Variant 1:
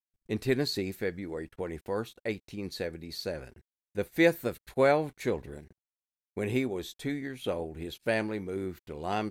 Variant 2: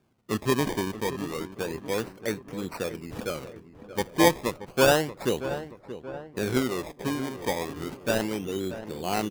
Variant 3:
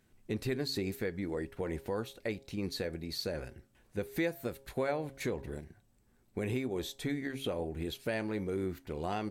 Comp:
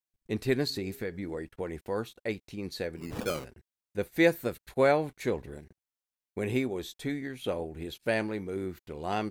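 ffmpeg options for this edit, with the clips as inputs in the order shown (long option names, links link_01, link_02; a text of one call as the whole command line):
ffmpeg -i take0.wav -i take1.wav -i take2.wav -filter_complex "[0:a]asplit=3[link_01][link_02][link_03];[link_01]atrim=end=0.702[link_04];[2:a]atrim=start=0.698:end=1.372[link_05];[link_02]atrim=start=1.368:end=3.01[link_06];[1:a]atrim=start=2.95:end=3.47[link_07];[link_03]atrim=start=3.41[link_08];[link_04][link_05]acrossfade=duration=0.004:curve1=hsin:curve2=hsin[link_09];[link_09][link_06]acrossfade=duration=0.004:curve1=hsin:curve2=hsin[link_10];[link_10][link_07]acrossfade=duration=0.06:curve1=tri:curve2=tri[link_11];[link_11][link_08]acrossfade=duration=0.06:curve1=tri:curve2=tri" out.wav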